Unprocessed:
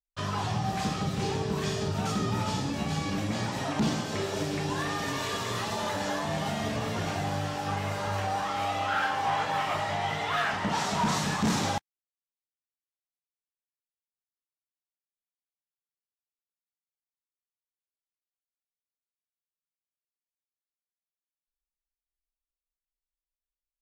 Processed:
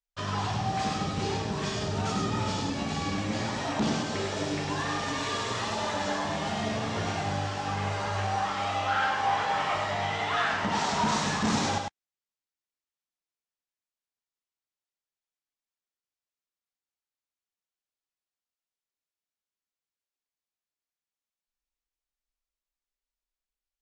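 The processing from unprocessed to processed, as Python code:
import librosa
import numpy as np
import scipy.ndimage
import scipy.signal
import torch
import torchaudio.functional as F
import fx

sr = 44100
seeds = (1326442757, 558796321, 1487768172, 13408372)

y = scipy.signal.sosfilt(scipy.signal.butter(4, 7900.0, 'lowpass', fs=sr, output='sos'), x)
y = fx.peak_eq(y, sr, hz=140.0, db=-5.5, octaves=0.71)
y = y + 10.0 ** (-4.5 / 20.0) * np.pad(y, (int(101 * sr / 1000.0), 0))[:len(y)]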